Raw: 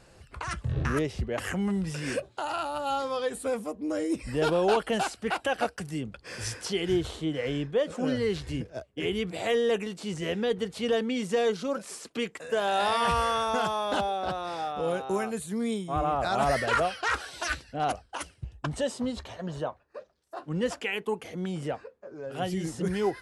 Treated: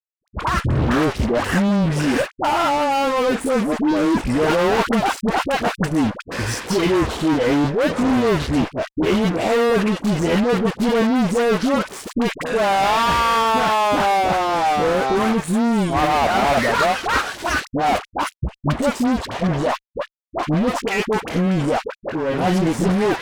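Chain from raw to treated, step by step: graphic EQ 250/1000/4000 Hz +8/+6/-3 dB; fuzz box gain 33 dB, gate -40 dBFS; peak limiter -22 dBFS, peak gain reduction 11 dB; treble shelf 7.2 kHz -9 dB; phase dispersion highs, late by 63 ms, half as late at 730 Hz; trim +7.5 dB

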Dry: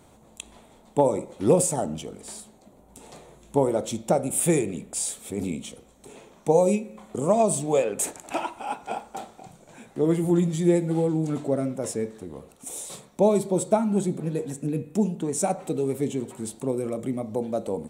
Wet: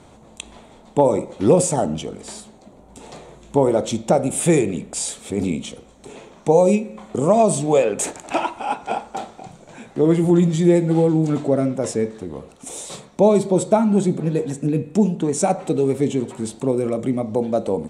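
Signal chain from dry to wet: low-pass 7.1 kHz 12 dB/octave; in parallel at -1.5 dB: peak limiter -16 dBFS, peak gain reduction 9.5 dB; on the sum: trim +2 dB

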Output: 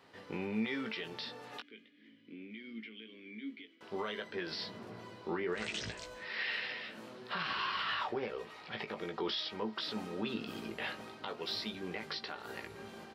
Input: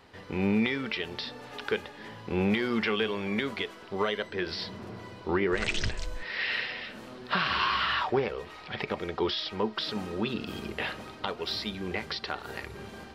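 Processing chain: high-pass 140 Hz 12 dB/octave; peak limiter -22 dBFS, peak gain reduction 7.5 dB; 1.60–3.81 s: vowel filter i; doubling 18 ms -6 dB; trim -6 dB

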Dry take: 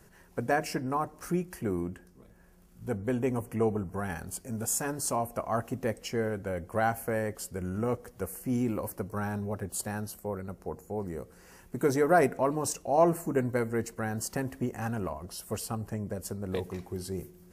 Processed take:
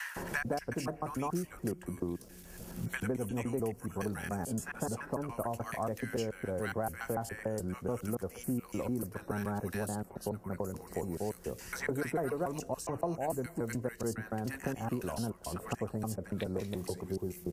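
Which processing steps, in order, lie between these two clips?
slices played last to first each 143 ms, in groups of 2; bands offset in time highs, lows 160 ms, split 1.3 kHz; three bands compressed up and down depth 100%; trim -4.5 dB

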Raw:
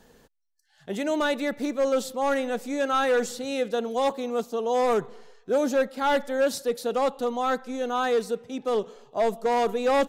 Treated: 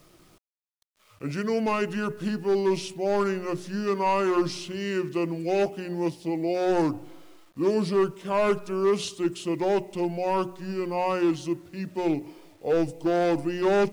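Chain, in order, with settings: wide varispeed 0.724×; hum notches 60/120/180/240/300/360/420 Hz; bit crusher 10-bit

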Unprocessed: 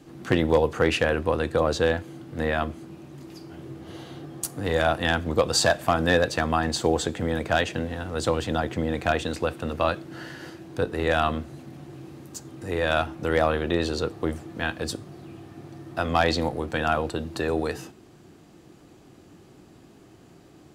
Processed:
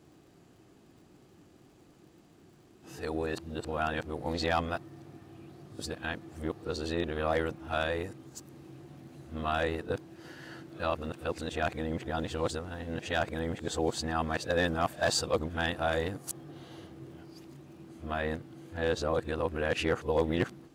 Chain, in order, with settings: reverse the whole clip; crackle 83 per s -49 dBFS; trim -7.5 dB

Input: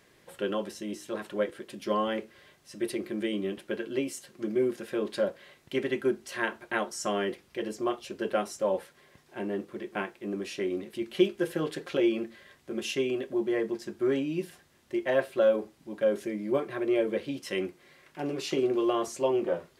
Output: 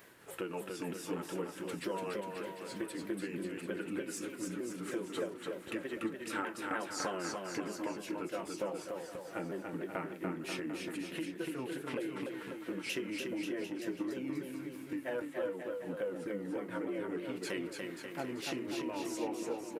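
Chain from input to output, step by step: sawtooth pitch modulation -4 st, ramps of 307 ms; peaking EQ 5.6 kHz -12.5 dB 2.5 oct; compression 8:1, threshold -40 dBFS, peak gain reduction 20.5 dB; tilt EQ +2.5 dB/octave; on a send: bouncing-ball echo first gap 290 ms, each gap 0.85×, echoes 5; on the sum: trim +6.5 dB

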